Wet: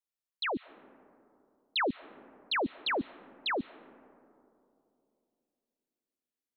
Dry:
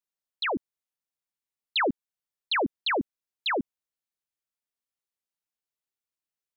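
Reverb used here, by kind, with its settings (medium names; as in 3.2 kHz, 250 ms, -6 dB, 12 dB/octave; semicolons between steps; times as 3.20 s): algorithmic reverb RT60 2.9 s, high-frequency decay 0.25×, pre-delay 100 ms, DRR 20 dB; trim -4.5 dB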